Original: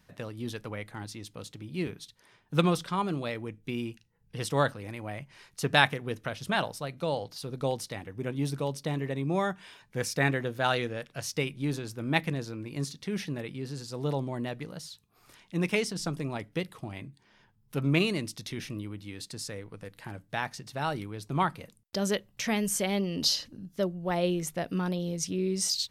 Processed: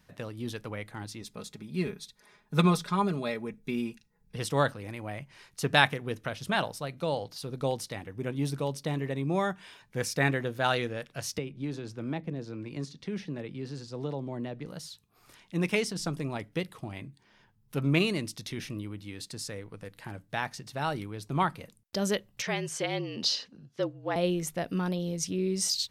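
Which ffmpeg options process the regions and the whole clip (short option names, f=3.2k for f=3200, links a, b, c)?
-filter_complex "[0:a]asettb=1/sr,asplit=3[a][b][c];[a]atrim=end=1.214[d];[b]atrim=start=1.21:end=4.36,asetpts=PTS-STARTPTS,afade=t=in:d=0.004:c=qsin,afade=t=out:st=3.146:d=0.004:c=qsin,bandreject=f=3k:w=6.8,aecho=1:1:4.8:0.64,atrim=end_sample=138915[e];[c]atrim=start=4.356[f];[d][e]acrossfade=d=0.004:c1=hsin:c2=qsin[g];[g][f]acrossfade=d=0.004:c1=qsin:c2=hsin,asettb=1/sr,asplit=3[h][i][j];[h]atrim=end=11.384[k];[i]atrim=start=11.38:end=14.66,asetpts=PTS-STARTPTS,afade=t=in:d=0.004:c=qsin,afade=t=out:st=3.276:d=0.004:c=qsin,lowpass=6.3k,acrossover=split=160|700[l][m][n];[l]acompressor=threshold=-44dB:ratio=4[o];[m]acompressor=threshold=-32dB:ratio=4[p];[n]acompressor=threshold=-47dB:ratio=4[q];[o][p][q]amix=inputs=3:normalize=0[r];[j]atrim=start=14.656[s];[k][r]acrossfade=d=0.004:c1=hsin:c2=qsin[t];[t][s]acrossfade=d=0.004:c1=qsin:c2=hsin,asettb=1/sr,asplit=3[u][v][w];[u]atrim=end=22.424[x];[v]atrim=start=22.42:end=24.16,asetpts=PTS-STARTPTS,afade=t=in:d=0.004:c=qsin,afade=t=out:st=1.736:d=0.004:c=qsin,highpass=310,lowpass=5.6k,afreqshift=-43[y];[w]atrim=start=24.156[z];[x][y]acrossfade=d=0.004:c1=hsin:c2=qsin[aa];[aa][z]acrossfade=d=0.004:c1=qsin:c2=hsin"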